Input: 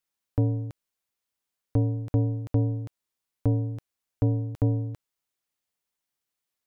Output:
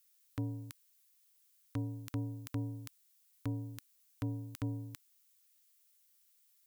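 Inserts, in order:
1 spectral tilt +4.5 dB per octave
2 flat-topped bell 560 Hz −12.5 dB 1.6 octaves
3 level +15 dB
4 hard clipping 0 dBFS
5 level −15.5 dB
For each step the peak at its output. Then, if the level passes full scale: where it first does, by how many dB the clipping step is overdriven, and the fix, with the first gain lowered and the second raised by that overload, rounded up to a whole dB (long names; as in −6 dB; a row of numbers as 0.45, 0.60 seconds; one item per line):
−17.0, −17.5, −2.5, −2.5, −18.0 dBFS
no step passes full scale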